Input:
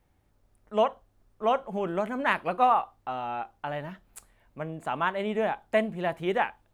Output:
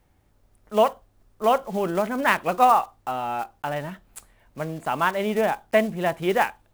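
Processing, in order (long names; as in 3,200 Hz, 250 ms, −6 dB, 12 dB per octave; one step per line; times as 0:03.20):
one scale factor per block 5 bits
level +5 dB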